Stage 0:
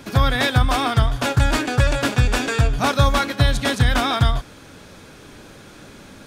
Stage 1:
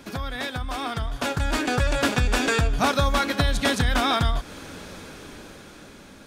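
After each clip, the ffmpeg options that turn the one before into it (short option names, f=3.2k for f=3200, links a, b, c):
-af "acompressor=threshold=-24dB:ratio=3,equalizer=f=120:t=o:w=0.22:g=-14,dynaudnorm=f=260:g=11:m=11.5dB,volume=-4.5dB"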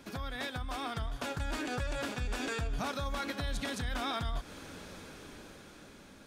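-af "alimiter=limit=-18dB:level=0:latency=1:release=107,volume=-8dB"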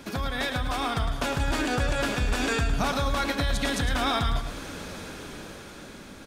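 -af "aecho=1:1:108|216|324|432:0.398|0.131|0.0434|0.0143,volume=9dB"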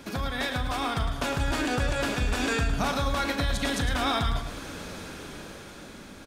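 -filter_complex "[0:a]asplit=2[a][b];[b]adelay=40,volume=-12.5dB[c];[a][c]amix=inputs=2:normalize=0,volume=-1dB"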